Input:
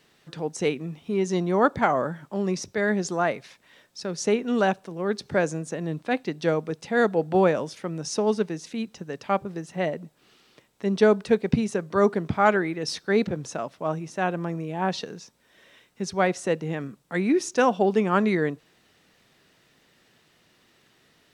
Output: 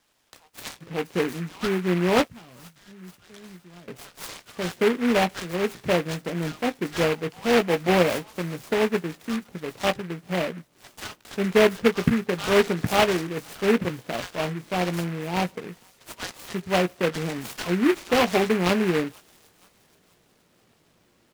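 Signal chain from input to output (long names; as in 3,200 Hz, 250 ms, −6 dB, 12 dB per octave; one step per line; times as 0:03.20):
0:01.71–0:03.34: guitar amp tone stack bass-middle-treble 6-0-2
three-band delay without the direct sound mids, highs, lows 30/540 ms, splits 1,500/4,800 Hz
in parallel at −4 dB: sample-rate reduction 4,600 Hz, jitter 0%
on the sum: double-tracking delay 17 ms −8.5 dB
on a send: delay with a high-pass on its return 475 ms, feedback 46%, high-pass 3,100 Hz, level −12.5 dB
on the sum: short delay modulated by noise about 1,600 Hz, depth 0.13 ms
level −3.5 dB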